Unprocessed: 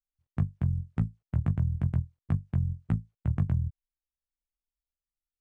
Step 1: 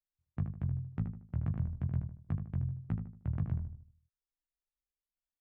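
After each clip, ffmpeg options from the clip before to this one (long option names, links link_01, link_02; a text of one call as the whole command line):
ffmpeg -i in.wav -filter_complex "[0:a]aemphasis=mode=reproduction:type=50fm,asplit=2[link_01][link_02];[link_02]adelay=77,lowpass=frequency=1600:poles=1,volume=-6dB,asplit=2[link_03][link_04];[link_04]adelay=77,lowpass=frequency=1600:poles=1,volume=0.4,asplit=2[link_05][link_06];[link_06]adelay=77,lowpass=frequency=1600:poles=1,volume=0.4,asplit=2[link_07][link_08];[link_08]adelay=77,lowpass=frequency=1600:poles=1,volume=0.4,asplit=2[link_09][link_10];[link_10]adelay=77,lowpass=frequency=1600:poles=1,volume=0.4[link_11];[link_01][link_03][link_05][link_07][link_09][link_11]amix=inputs=6:normalize=0,volume=-7.5dB" out.wav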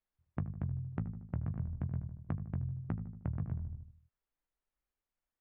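ffmpeg -i in.wav -af "lowpass=1900,acompressor=threshold=-41dB:ratio=5,volume=7dB" out.wav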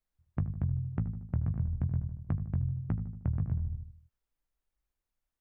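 ffmpeg -i in.wav -af "lowshelf=frequency=130:gain=10" out.wav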